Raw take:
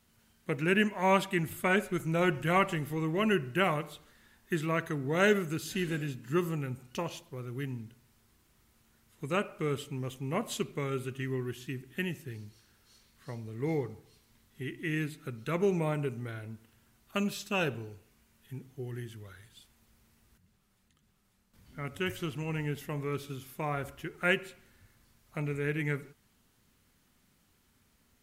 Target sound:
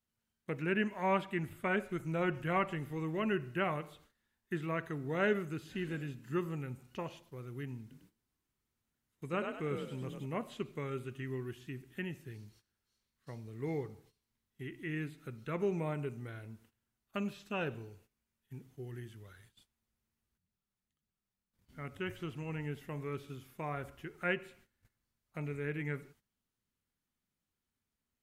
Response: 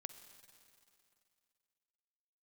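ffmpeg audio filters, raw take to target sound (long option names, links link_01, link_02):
-filter_complex "[0:a]asettb=1/sr,asplit=3[link_01][link_02][link_03];[link_01]atrim=end=7.814[link_04];[link_02]atrim=start=7.81:end=10.26,asetpts=PTS-STARTPTS,afade=type=in:duration=0.004:curve=qsin,afade=type=out:start_time=2.446:duration=0.004:curve=qsin,asplit=5[link_05][link_06][link_07][link_08][link_09];[link_06]adelay=100,afreqshift=38,volume=-5dB[link_10];[link_07]adelay=200,afreqshift=76,volume=-13.9dB[link_11];[link_08]adelay=300,afreqshift=114,volume=-22.7dB[link_12];[link_09]adelay=400,afreqshift=152,volume=-31.6dB[link_13];[link_05][link_10][link_11][link_12][link_13]amix=inputs=5:normalize=0,atrim=end_sample=108045[link_14];[link_03]atrim=start=10.256[link_15];[link_04][link_14]acrossfade=duration=0.004:curve1=hsin:curve2=qsin[link_16];[link_16][link_15]acrossfade=duration=0.004:curve1=qsin:curve2=hsin,acrossover=split=3000[link_17][link_18];[link_18]acompressor=threshold=-56dB:ratio=4:attack=1:release=60[link_19];[link_17][link_19]amix=inputs=2:normalize=0,agate=range=-15dB:threshold=-57dB:ratio=16:detection=peak,volume=-5.5dB"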